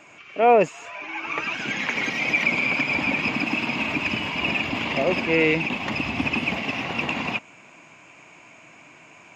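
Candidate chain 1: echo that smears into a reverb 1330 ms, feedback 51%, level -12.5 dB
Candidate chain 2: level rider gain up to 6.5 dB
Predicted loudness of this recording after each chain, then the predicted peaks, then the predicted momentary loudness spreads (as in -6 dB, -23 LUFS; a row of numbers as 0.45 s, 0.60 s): -22.5 LUFS, -18.0 LUFS; -6.5 dBFS, -2.5 dBFS; 16 LU, 7 LU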